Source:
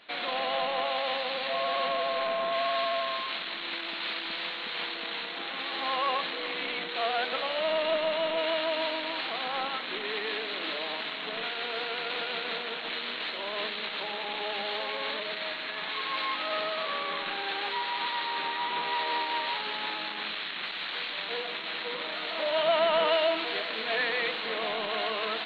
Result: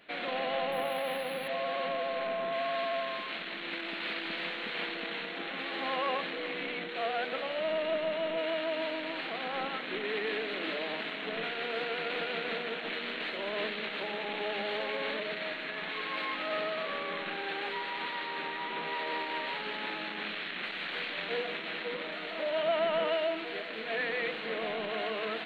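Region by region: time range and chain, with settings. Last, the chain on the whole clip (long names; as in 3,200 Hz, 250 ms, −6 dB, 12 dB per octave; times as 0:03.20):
0:00.72–0:01.48: parametric band 100 Hz +11.5 dB 1.3 octaves + linearly interpolated sample-rate reduction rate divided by 3×
whole clip: hum removal 81 Hz, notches 3; speech leveller 2 s; octave-band graphic EQ 125/1,000/4,000 Hz +4/−8/−11 dB; level +1.5 dB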